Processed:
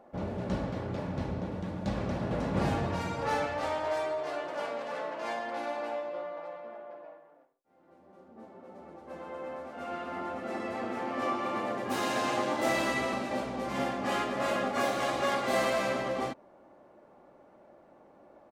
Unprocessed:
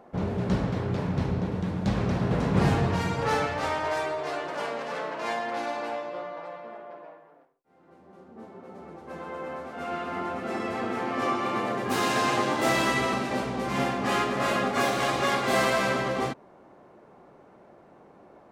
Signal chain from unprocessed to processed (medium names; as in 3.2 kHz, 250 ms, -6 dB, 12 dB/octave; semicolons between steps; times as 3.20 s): peaking EQ 630 Hz +4.5 dB 0.7 oct; comb 3.5 ms, depth 30%; trim -6.5 dB